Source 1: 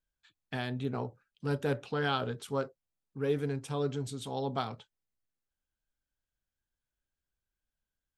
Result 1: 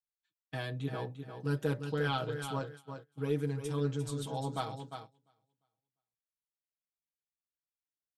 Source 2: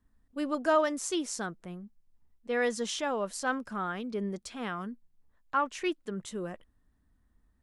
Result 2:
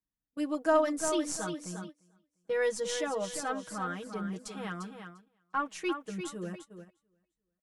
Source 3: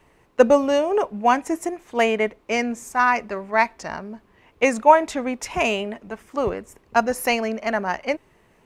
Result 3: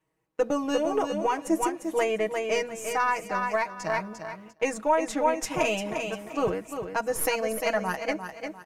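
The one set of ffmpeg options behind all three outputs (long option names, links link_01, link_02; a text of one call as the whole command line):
ffmpeg -i in.wav -af "aecho=1:1:349|698|1047|1396:0.398|0.119|0.0358|0.0107,agate=range=-18dB:threshold=-43dB:ratio=16:detection=peak,highpass=53,alimiter=limit=-12dB:level=0:latency=1:release=261,aemphasis=mode=production:type=cd,crystalizer=i=3:c=0,aeval=exprs='1.19*(cos(1*acos(clip(val(0)/1.19,-1,1)))-cos(1*PI/2))+0.106*(cos(3*acos(clip(val(0)/1.19,-1,1)))-cos(3*PI/2))+0.0211*(cos(6*acos(clip(val(0)/1.19,-1,1)))-cos(6*PI/2))':channel_layout=same,lowpass=frequency=1100:poles=1,aecho=1:1:6.3:0.9,volume=-1dB" out.wav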